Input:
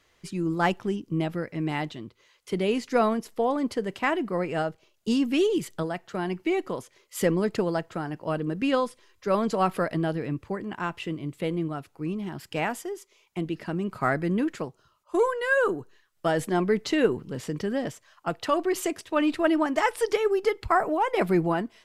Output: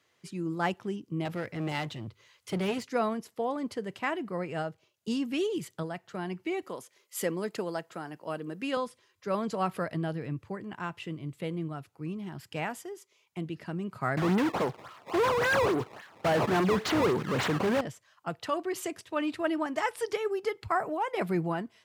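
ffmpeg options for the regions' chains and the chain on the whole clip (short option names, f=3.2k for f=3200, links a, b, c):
-filter_complex "[0:a]asettb=1/sr,asplit=3[a][b][c];[a]atrim=end=1.254[d];[b]atrim=start=1.25:end=2.83,asetpts=PTS-STARTPTS,afade=t=in:d=0.004:c=qsin,afade=t=out:st=1.576:d=0.004:c=qsin,asubboost=boost=7:cutoff=160,acontrast=58,aeval=exprs='clip(val(0),-1,0.0282)':c=same[e];[c]atrim=start=2.826[f];[d][e]acrossfade=d=0.004:c1=hsin:c2=qsin[g];[g][f]acrossfade=d=0.004:c1=qsin:c2=hsin,asettb=1/sr,asplit=3[h][i][j];[h]atrim=end=6.624[k];[i]atrim=start=6.62:end=8.77,asetpts=PTS-STARTPTS,afade=t=in:d=0.004:c=qsin,afade=t=out:st=2.146:d=0.004:c=qsin,highpass=240,highshelf=f=7.7k:g=7.5[l];[j]atrim=start=8.766[m];[k][l]acrossfade=d=0.004:c1=hsin:c2=qsin[n];[n][m]acrossfade=d=0.004:c1=qsin:c2=hsin,asettb=1/sr,asplit=3[o][p][q];[o]atrim=end=14.174[r];[p]atrim=start=14.17:end=17.81,asetpts=PTS-STARTPTS,afade=t=in:d=0.004:c=qsin,afade=t=out:st=3.636:d=0.004:c=qsin,aemphasis=mode=production:type=50fm,acrusher=samples=17:mix=1:aa=0.000001:lfo=1:lforange=27.2:lforate=3.6,asplit=2[s][t];[t]highpass=f=720:p=1,volume=32dB,asoftclip=type=tanh:threshold=-12dB[u];[s][u]amix=inputs=2:normalize=0,lowpass=f=1.7k:p=1,volume=-6dB[v];[q]atrim=start=17.806[w];[r][v]acrossfade=d=0.004:c1=hsin:c2=qsin[x];[x][w]acrossfade=d=0.004:c1=qsin:c2=hsin,highpass=f=98:w=0.5412,highpass=f=98:w=1.3066,asubboost=boost=2.5:cutoff=140,volume=-5.5dB"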